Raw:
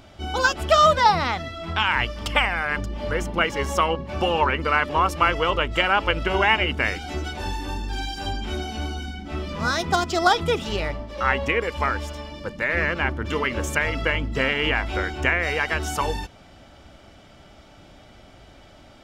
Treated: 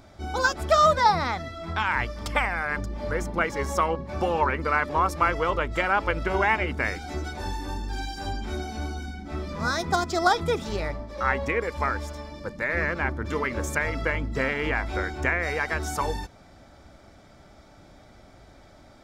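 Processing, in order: peaking EQ 2.9 kHz -14 dB 0.3 oct; trim -2.5 dB

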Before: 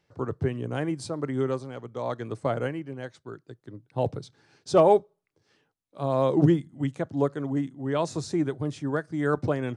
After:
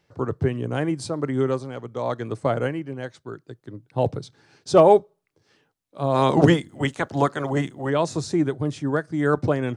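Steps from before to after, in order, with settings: 6.14–7.89 s: spectral peaks clipped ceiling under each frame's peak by 17 dB; trim +4.5 dB

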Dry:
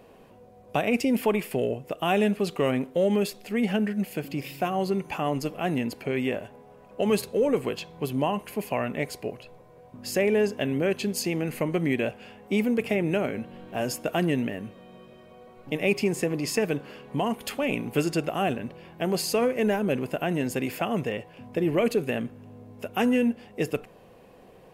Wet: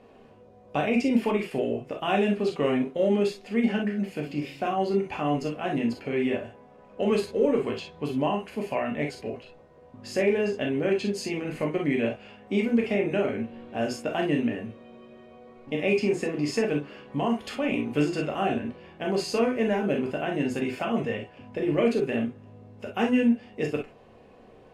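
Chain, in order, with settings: distance through air 77 m; gated-style reverb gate 80 ms flat, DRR 0 dB; trim -3 dB

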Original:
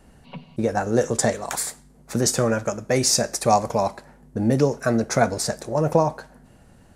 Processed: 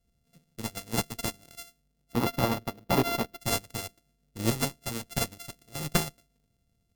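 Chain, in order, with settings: sorted samples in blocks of 64 samples; peaking EQ 1.1 kHz -14 dB 2.4 oct; Chebyshev shaper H 8 -15 dB, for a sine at -5 dBFS; 2.13–3.40 s: graphic EQ 250/500/1000/8000 Hz +6/+5/+8/-11 dB; upward expansion 2.5:1, over -32 dBFS

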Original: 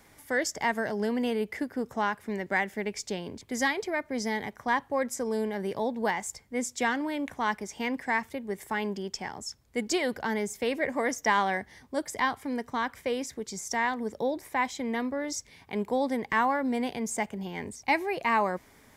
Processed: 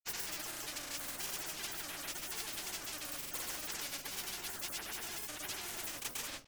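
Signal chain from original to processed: treble shelf 12 kHz -6.5 dB; harmony voices -12 st -7 dB, +4 st -6 dB; echo from a far wall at 35 m, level -13 dB; wide varispeed 2.93×; amplifier tone stack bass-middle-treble 10-0-1; simulated room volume 190 m³, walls furnished, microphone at 2.4 m; gate -56 dBFS, range -7 dB; granulator 100 ms, grains 20 per s, spray 100 ms, pitch spread up and down by 0 st; spectrum-flattening compressor 4:1; trim +6.5 dB

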